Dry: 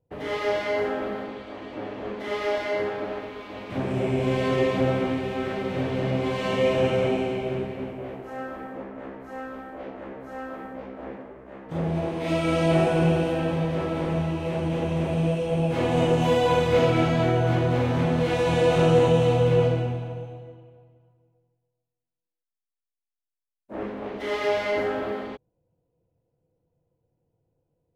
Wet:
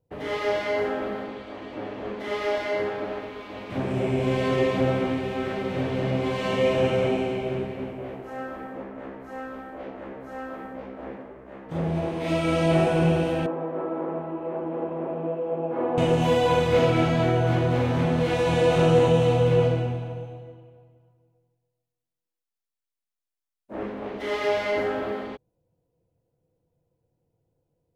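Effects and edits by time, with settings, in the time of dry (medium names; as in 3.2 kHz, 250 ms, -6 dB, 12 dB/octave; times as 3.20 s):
13.46–15.98 s: Chebyshev band-pass 300–1200 Hz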